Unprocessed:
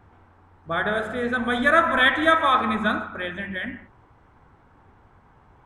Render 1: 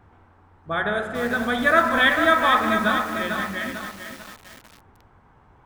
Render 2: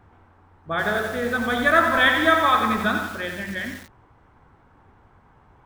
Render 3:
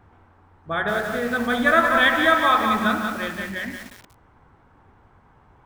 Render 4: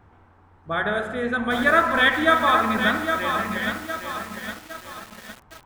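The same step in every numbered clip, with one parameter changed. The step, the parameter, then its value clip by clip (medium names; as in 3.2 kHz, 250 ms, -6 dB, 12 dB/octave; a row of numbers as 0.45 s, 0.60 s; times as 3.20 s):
bit-crushed delay, time: 447 ms, 89 ms, 181 ms, 810 ms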